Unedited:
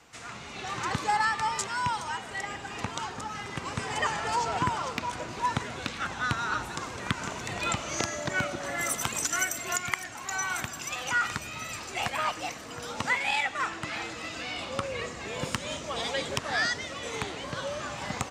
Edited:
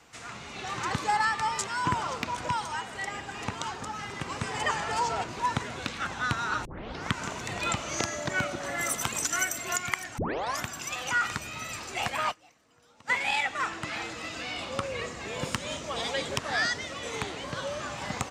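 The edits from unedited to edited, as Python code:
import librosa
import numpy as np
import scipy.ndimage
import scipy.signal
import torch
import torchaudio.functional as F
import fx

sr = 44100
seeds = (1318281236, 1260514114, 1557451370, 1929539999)

y = fx.edit(x, sr, fx.move(start_s=4.6, length_s=0.64, to_s=1.85),
    fx.tape_start(start_s=6.65, length_s=0.47),
    fx.tape_start(start_s=10.18, length_s=0.46),
    fx.fade_down_up(start_s=12.31, length_s=0.79, db=-23.5, fade_s=0.14, curve='exp'), tone=tone)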